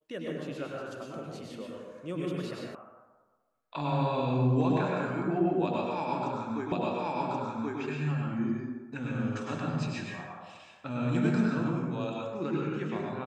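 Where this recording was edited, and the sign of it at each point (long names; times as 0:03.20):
0:02.75: cut off before it has died away
0:06.72: the same again, the last 1.08 s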